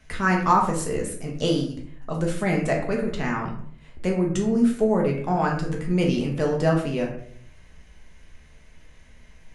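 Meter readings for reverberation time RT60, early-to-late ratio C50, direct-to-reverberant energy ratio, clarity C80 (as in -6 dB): 0.60 s, 6.0 dB, -1.0 dB, 10.0 dB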